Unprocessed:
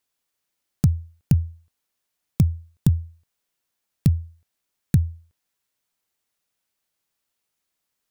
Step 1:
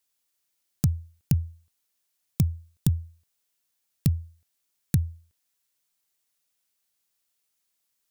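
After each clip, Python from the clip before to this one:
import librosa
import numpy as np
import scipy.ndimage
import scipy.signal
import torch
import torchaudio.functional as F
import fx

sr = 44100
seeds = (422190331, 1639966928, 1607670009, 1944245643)

y = fx.high_shelf(x, sr, hz=3000.0, db=9.0)
y = y * librosa.db_to_amplitude(-5.0)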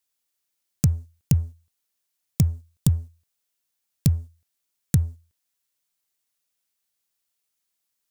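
y = fx.dynamic_eq(x, sr, hz=7300.0, q=1.1, threshold_db=-59.0, ratio=4.0, max_db=7)
y = fx.leveller(y, sr, passes=1)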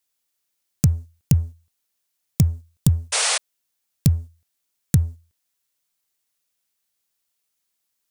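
y = fx.spec_paint(x, sr, seeds[0], shape='noise', start_s=3.12, length_s=0.26, low_hz=420.0, high_hz=10000.0, level_db=-23.0)
y = y * librosa.db_to_amplitude(2.5)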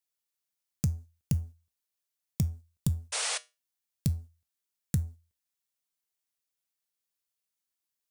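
y = fx.comb_fb(x, sr, f0_hz=68.0, decay_s=0.25, harmonics='odd', damping=0.0, mix_pct=50)
y = y * librosa.db_to_amplitude(-6.5)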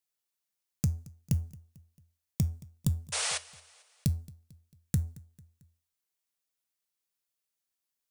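y = fx.echo_feedback(x, sr, ms=223, feedback_pct=49, wet_db=-22)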